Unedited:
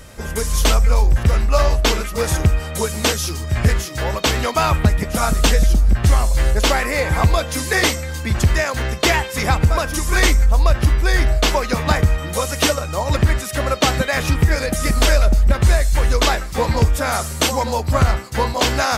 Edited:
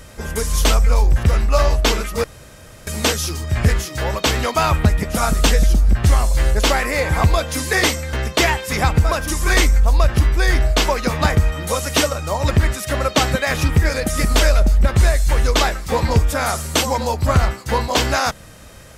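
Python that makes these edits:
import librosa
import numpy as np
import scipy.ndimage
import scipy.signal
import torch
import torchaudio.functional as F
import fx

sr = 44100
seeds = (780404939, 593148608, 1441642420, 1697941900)

y = fx.edit(x, sr, fx.room_tone_fill(start_s=2.24, length_s=0.63),
    fx.cut(start_s=8.13, length_s=0.66), tone=tone)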